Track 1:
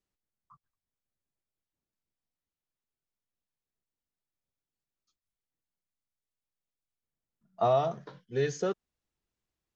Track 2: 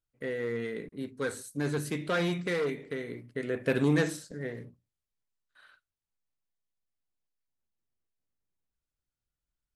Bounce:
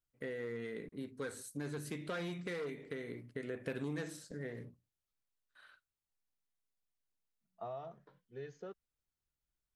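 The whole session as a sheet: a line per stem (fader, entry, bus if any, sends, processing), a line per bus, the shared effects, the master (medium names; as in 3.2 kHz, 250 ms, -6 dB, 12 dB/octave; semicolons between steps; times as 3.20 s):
-16.5 dB, 0.00 s, no send, tone controls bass -1 dB, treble -12 dB
-3.0 dB, 0.00 s, no send, none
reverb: none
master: compression 3:1, threshold -40 dBFS, peak gain reduction 12.5 dB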